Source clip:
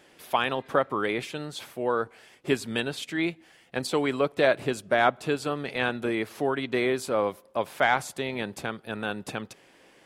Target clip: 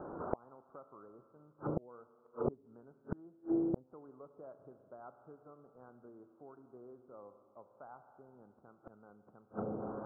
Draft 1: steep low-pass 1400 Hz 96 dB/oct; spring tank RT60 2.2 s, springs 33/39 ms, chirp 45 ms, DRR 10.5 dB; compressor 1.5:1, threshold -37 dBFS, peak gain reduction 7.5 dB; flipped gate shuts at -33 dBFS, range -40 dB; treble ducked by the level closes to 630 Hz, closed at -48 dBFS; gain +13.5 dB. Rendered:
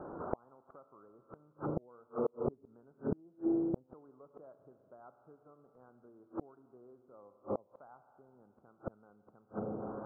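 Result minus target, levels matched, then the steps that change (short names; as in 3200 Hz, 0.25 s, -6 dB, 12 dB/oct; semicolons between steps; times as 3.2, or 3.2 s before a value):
compressor: peak gain reduction +4 dB
change: compressor 1.5:1, threshold -25.5 dBFS, peak gain reduction 3.5 dB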